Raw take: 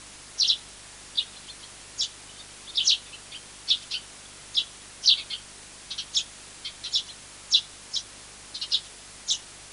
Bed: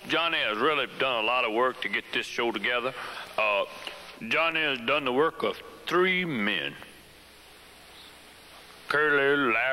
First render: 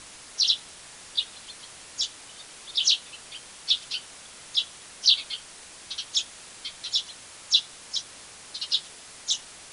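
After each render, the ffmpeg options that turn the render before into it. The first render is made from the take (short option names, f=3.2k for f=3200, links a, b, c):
-af "bandreject=f=50:t=h:w=4,bandreject=f=100:t=h:w=4,bandreject=f=150:t=h:w=4,bandreject=f=200:t=h:w=4,bandreject=f=250:t=h:w=4,bandreject=f=300:t=h:w=4,bandreject=f=350:t=h:w=4,bandreject=f=400:t=h:w=4"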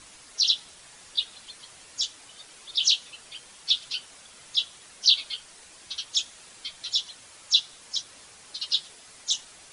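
-af "afftdn=nr=6:nf=-47"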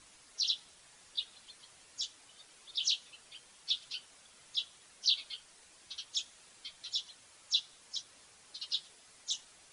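-af "volume=-10dB"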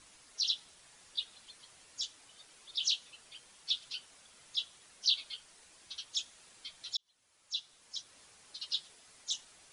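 -filter_complex "[0:a]asplit=2[a][b];[a]atrim=end=6.97,asetpts=PTS-STARTPTS,afade=t=out:st=6.966:d=0.004:c=hsin[c];[b]atrim=start=6.97,asetpts=PTS-STARTPTS,afade=t=in:d=1.26[d];[c][d]concat=n=2:v=0:a=1"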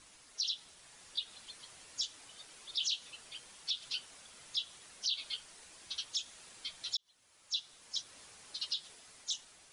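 -af "dynaudnorm=f=390:g=5:m=4dB,alimiter=level_in=1dB:limit=-24dB:level=0:latency=1:release=122,volume=-1dB"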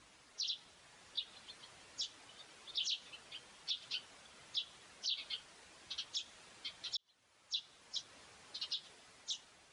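-af "highpass=43,aemphasis=mode=reproduction:type=50fm"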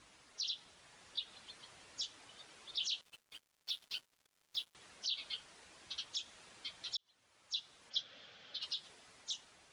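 -filter_complex "[0:a]asettb=1/sr,asplit=3[a][b][c];[a]atrim=end=3.014[d];[b]atrim=start=3.01:end=4.75,asetpts=PTS-STARTPTS,afade=t=in:d=0.004:c=qsin,afade=t=out:st=1.736:d=0.004:c=qsin,aeval=exprs='sgn(val(0))*max(abs(val(0))-0.002,0)':c=same[e];[c]atrim=start=4.746[f];[d][e]acrossfade=d=0.004:c1=hsin:c2=qsin[g];[g][f]acrossfade=d=0.004:c1=qsin:c2=hsin,asplit=3[h][i][j];[h]afade=t=out:st=7.89:d=0.02[k];[i]highpass=110,equalizer=f=370:t=q:w=4:g=-9,equalizer=f=530:t=q:w=4:g=5,equalizer=f=990:t=q:w=4:g=-9,equalizer=f=1.5k:t=q:w=4:g=4,equalizer=f=3.3k:t=q:w=4:g=10,lowpass=f=5.3k:w=0.5412,lowpass=f=5.3k:w=1.3066,afade=t=in:st=7.89:d=0.02,afade=t=out:st=8.61:d=0.02[l];[j]afade=t=in:st=8.61:d=0.02[m];[k][l][m]amix=inputs=3:normalize=0"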